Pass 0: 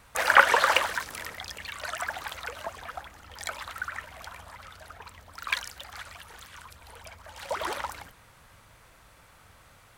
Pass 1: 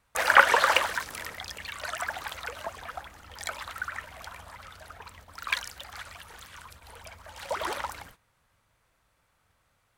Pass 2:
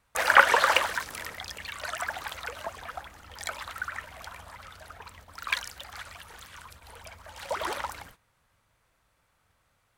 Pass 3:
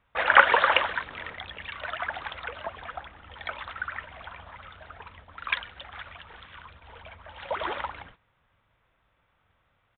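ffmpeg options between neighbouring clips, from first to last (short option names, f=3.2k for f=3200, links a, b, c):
-af "agate=range=-15dB:threshold=-51dB:ratio=16:detection=peak"
-af anull
-af "aresample=8000,aresample=44100,volume=1dB"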